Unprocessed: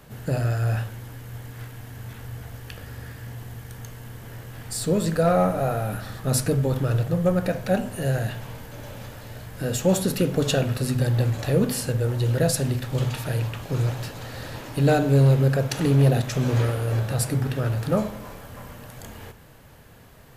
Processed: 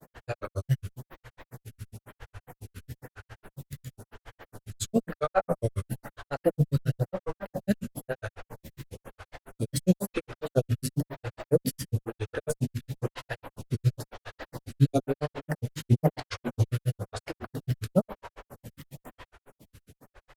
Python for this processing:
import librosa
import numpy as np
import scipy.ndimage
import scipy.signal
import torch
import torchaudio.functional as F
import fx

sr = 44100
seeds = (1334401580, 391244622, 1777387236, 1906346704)

y = fx.granulator(x, sr, seeds[0], grain_ms=73.0, per_s=7.3, spray_ms=37.0, spread_st=3)
y = fx.stagger_phaser(y, sr, hz=1.0)
y = y * 10.0 ** (3.0 / 20.0)